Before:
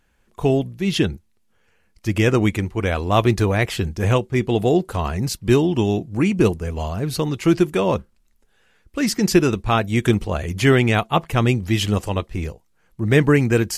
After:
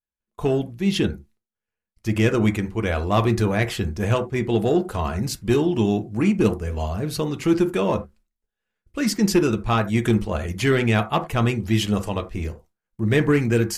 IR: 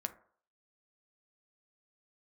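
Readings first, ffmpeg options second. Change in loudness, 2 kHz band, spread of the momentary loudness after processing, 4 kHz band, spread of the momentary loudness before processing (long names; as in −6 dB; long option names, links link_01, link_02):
−2.5 dB, −3.0 dB, 8 LU, −3.0 dB, 9 LU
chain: -filter_complex "[0:a]agate=range=-33dB:threshold=-45dB:ratio=3:detection=peak,acontrast=49[link_01];[1:a]atrim=start_sample=2205,atrim=end_sample=4410[link_02];[link_01][link_02]afir=irnorm=-1:irlink=0,volume=-7dB"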